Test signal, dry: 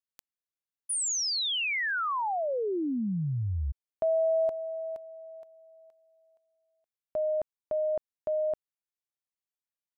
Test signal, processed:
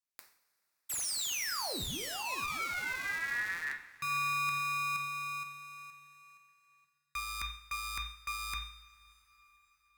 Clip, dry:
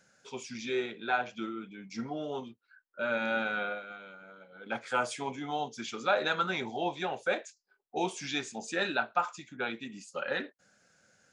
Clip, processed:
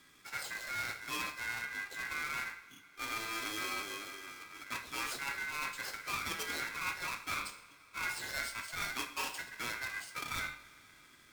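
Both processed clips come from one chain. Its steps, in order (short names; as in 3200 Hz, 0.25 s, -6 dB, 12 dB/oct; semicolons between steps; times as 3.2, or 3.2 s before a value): half-waves squared off; bell 1200 Hz -14.5 dB 0.31 oct; de-hum 84.36 Hz, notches 29; reverse; compressor 6:1, threshold -37 dBFS; reverse; two-slope reverb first 0.55 s, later 4.7 s, from -19 dB, DRR 7 dB; ring modulator 1800 Hz; gain +3 dB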